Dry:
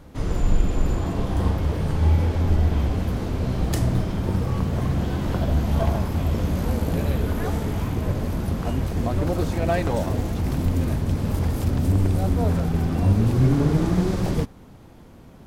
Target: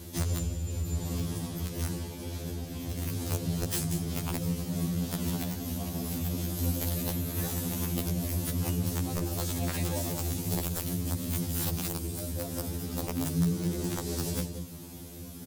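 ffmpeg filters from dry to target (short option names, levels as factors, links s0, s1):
-filter_complex "[0:a]equalizer=f=1200:t=o:w=2.6:g=-9.5,afreqshift=41,acompressor=threshold=0.0251:ratio=5,bandreject=f=114:t=h:w=4,bandreject=f=228:t=h:w=4,crystalizer=i=4.5:c=0,asplit=2[s0][s1];[s1]adelay=186.6,volume=0.447,highshelf=f=4000:g=-4.2[s2];[s0][s2]amix=inputs=2:normalize=0,aeval=exprs='(mod(14.1*val(0)+1,2)-1)/14.1':c=same,afftfilt=real='re*2*eq(mod(b,4),0)':imag='im*2*eq(mod(b,4),0)':win_size=2048:overlap=0.75,volume=1.68"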